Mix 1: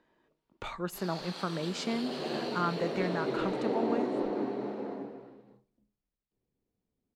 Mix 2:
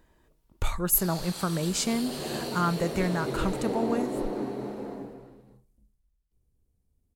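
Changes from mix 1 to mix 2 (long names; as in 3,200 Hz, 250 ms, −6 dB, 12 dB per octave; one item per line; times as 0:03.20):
speech +3.5 dB
master: remove three-way crossover with the lows and the highs turned down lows −21 dB, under 160 Hz, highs −22 dB, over 4,900 Hz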